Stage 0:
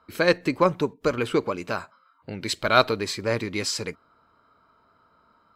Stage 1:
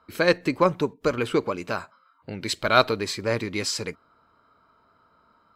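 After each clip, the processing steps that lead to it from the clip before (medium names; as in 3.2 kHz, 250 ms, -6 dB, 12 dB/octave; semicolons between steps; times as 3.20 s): no audible change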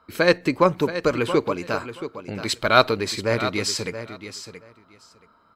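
feedback delay 676 ms, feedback 16%, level -11.5 dB; trim +2.5 dB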